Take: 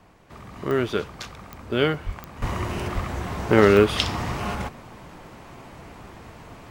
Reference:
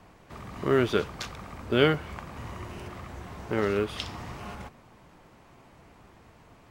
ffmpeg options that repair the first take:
ffmpeg -i in.wav -filter_complex "[0:a]adeclick=threshold=4,asplit=3[link_01][link_02][link_03];[link_01]afade=type=out:start_time=2.05:duration=0.02[link_04];[link_02]highpass=frequency=140:width=0.5412,highpass=frequency=140:width=1.3066,afade=type=in:start_time=2.05:duration=0.02,afade=type=out:start_time=2.17:duration=0.02[link_05];[link_03]afade=type=in:start_time=2.17:duration=0.02[link_06];[link_04][link_05][link_06]amix=inputs=3:normalize=0,asplit=3[link_07][link_08][link_09];[link_07]afade=type=out:start_time=2.4:duration=0.02[link_10];[link_08]highpass=frequency=140:width=0.5412,highpass=frequency=140:width=1.3066,afade=type=in:start_time=2.4:duration=0.02,afade=type=out:start_time=2.52:duration=0.02[link_11];[link_09]afade=type=in:start_time=2.52:duration=0.02[link_12];[link_10][link_11][link_12]amix=inputs=3:normalize=0,asplit=3[link_13][link_14][link_15];[link_13]afade=type=out:start_time=2.94:duration=0.02[link_16];[link_14]highpass=frequency=140:width=0.5412,highpass=frequency=140:width=1.3066,afade=type=in:start_time=2.94:duration=0.02,afade=type=out:start_time=3.06:duration=0.02[link_17];[link_15]afade=type=in:start_time=3.06:duration=0.02[link_18];[link_16][link_17][link_18]amix=inputs=3:normalize=0,asetnsamples=nb_out_samples=441:pad=0,asendcmd='2.42 volume volume -11.5dB',volume=0dB" out.wav

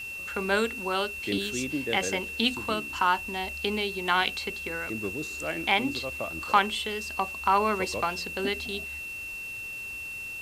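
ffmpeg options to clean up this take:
ffmpeg -i in.wav -af "bandreject=frequency=2700:width=30,afwtdn=0.0032" out.wav

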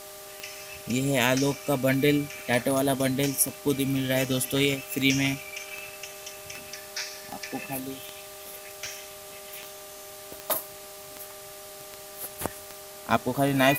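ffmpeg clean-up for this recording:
ffmpeg -i in.wav -af "adeclick=threshold=4,bandreject=frequency=395.6:width_type=h:width=4,bandreject=frequency=791.2:width_type=h:width=4,bandreject=frequency=1186.8:width_type=h:width=4,bandreject=frequency=610:width=30,afwtdn=0.0063" out.wav

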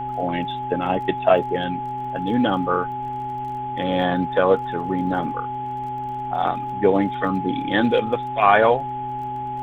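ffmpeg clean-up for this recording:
ffmpeg -i in.wav -af "adeclick=threshold=4,bandreject=frequency=127.9:width_type=h:width=4,bandreject=frequency=255.8:width_type=h:width=4,bandreject=frequency=383.7:width_type=h:width=4,bandreject=frequency=840:width=30,agate=range=-21dB:threshold=-20dB" out.wav

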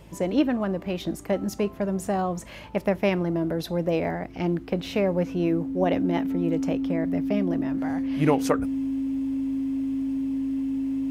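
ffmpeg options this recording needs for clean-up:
ffmpeg -i in.wav -af "bandreject=frequency=53:width_type=h:width=4,bandreject=frequency=106:width_type=h:width=4,bandreject=frequency=159:width_type=h:width=4,bandreject=frequency=212:width_type=h:width=4,bandreject=frequency=265:width_type=h:width=4,bandreject=frequency=318:width_type=h:width=4,bandreject=frequency=270:width=30" out.wav

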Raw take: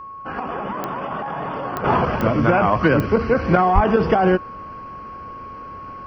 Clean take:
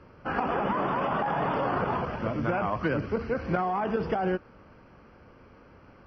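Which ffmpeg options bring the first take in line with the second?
ffmpeg -i in.wav -filter_complex "[0:a]adeclick=threshold=4,bandreject=frequency=1100:width=30,asplit=3[link_01][link_02][link_03];[link_01]afade=type=out:start_time=3.74:duration=0.02[link_04];[link_02]highpass=frequency=140:width=0.5412,highpass=frequency=140:width=1.3066,afade=type=in:start_time=3.74:duration=0.02,afade=type=out:start_time=3.86:duration=0.02[link_05];[link_03]afade=type=in:start_time=3.86:duration=0.02[link_06];[link_04][link_05][link_06]amix=inputs=3:normalize=0,asetnsamples=nb_out_samples=441:pad=0,asendcmd='1.84 volume volume -11.5dB',volume=0dB" out.wav

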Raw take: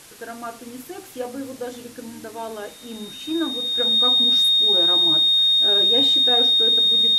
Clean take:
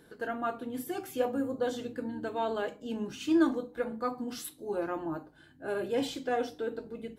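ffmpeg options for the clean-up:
ffmpeg -i in.wav -af "bandreject=frequency=3700:width=30,afwtdn=0.0063,asetnsamples=nb_out_samples=441:pad=0,asendcmd='3.65 volume volume -4.5dB',volume=0dB" out.wav

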